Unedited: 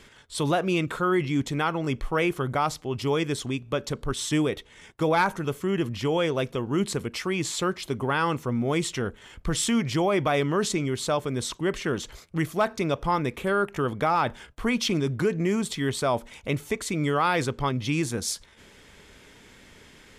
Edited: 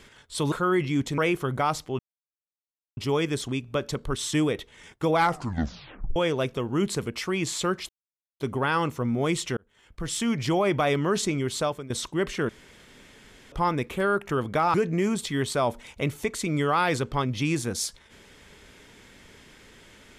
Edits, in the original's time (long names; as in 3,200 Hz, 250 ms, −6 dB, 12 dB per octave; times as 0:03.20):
0:00.52–0:00.92: remove
0:01.58–0:02.14: remove
0:02.95: splice in silence 0.98 s
0:05.15: tape stop 0.99 s
0:07.87: splice in silence 0.51 s
0:09.04–0:09.95: fade in
0:11.08–0:11.37: fade out, to −16.5 dB
0:11.96–0:12.99: fill with room tone
0:14.21–0:15.21: remove